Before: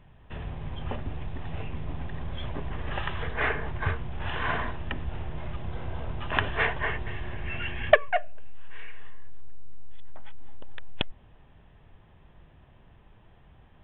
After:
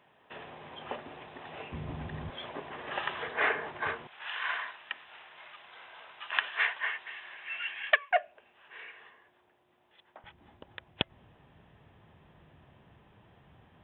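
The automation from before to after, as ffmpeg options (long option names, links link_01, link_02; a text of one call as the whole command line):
ffmpeg -i in.wav -af "asetnsamples=nb_out_samples=441:pad=0,asendcmd='1.72 highpass f 100;2.3 highpass f 370;4.07 highpass f 1400;8.11 highpass f 380;10.24 highpass f 100',highpass=400" out.wav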